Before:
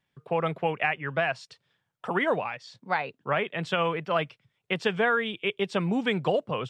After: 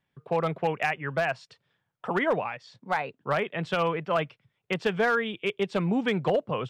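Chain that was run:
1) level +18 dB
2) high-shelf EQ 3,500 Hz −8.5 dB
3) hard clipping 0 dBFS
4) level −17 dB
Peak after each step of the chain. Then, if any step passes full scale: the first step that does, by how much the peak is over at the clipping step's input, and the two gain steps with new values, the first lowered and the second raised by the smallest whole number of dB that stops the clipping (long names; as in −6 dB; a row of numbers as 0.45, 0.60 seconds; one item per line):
+7.5, +6.0, 0.0, −17.0 dBFS
step 1, 6.0 dB
step 1 +12 dB, step 4 −11 dB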